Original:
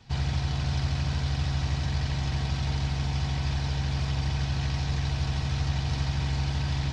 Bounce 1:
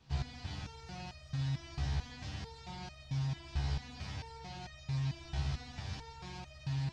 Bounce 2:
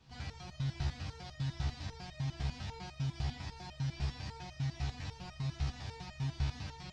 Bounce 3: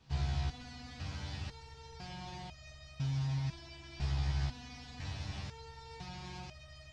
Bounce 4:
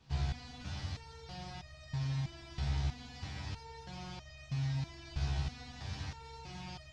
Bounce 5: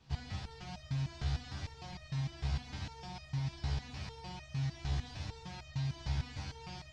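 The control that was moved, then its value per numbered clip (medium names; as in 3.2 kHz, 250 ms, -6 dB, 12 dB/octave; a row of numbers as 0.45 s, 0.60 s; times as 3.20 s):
resonator arpeggio, rate: 4.5 Hz, 10 Hz, 2 Hz, 3.1 Hz, 6.6 Hz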